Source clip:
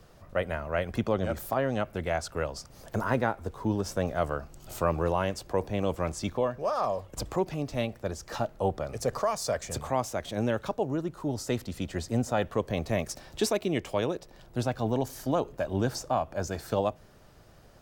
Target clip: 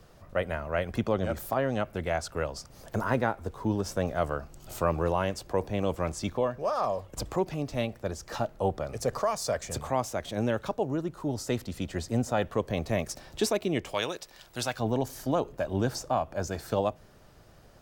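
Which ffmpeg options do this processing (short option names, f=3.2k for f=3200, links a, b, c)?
-filter_complex "[0:a]asettb=1/sr,asplit=3[a][b][c];[a]atrim=end=13.944[d];[b]atrim=start=13.94:end=14.79,asetpts=PTS-STARTPTS,afade=t=in:d=0.004:c=qsin,afade=t=out:st=0.846:d=0.004:c=qsin,tiltshelf=f=860:g=-9[e];[c]atrim=start=14.786[f];[d][e]acrossfade=d=0.004:c1=hsin:c2=qsin[g];[g][f]acrossfade=d=0.004:c1=qsin:c2=hsin"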